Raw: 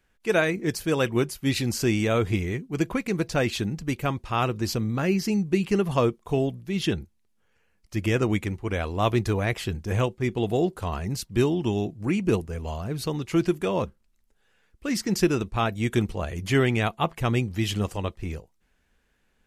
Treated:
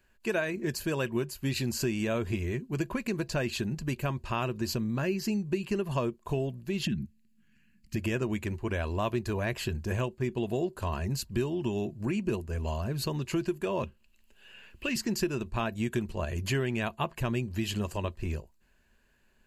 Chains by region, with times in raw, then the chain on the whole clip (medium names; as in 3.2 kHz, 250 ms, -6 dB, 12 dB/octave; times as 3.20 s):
6.85–7.96 s: FFT filter 100 Hz 0 dB, 180 Hz +15 dB, 280 Hz +8 dB, 540 Hz -27 dB, 2 kHz +2 dB, 4.3 kHz -2 dB + compression 2.5:1, threshold -23 dBFS
13.83–14.96 s: peaking EQ 2.8 kHz +13 dB 0.64 oct + three bands compressed up and down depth 40%
whole clip: rippled EQ curve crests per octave 1.4, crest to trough 7 dB; compression 3:1, threshold -29 dBFS